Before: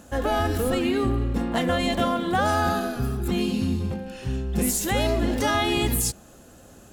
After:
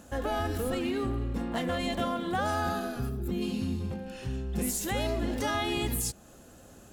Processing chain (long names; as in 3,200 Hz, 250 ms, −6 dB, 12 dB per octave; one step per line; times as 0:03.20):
0:03.09–0:03.42: gain on a spectral selection 680–12,000 Hz −7 dB
in parallel at −1 dB: downward compressor, threshold −32 dBFS, peak gain reduction 13 dB
0:00.74–0:01.86: on the sum: gain into a clipping stage and back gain 15 dB
level −9 dB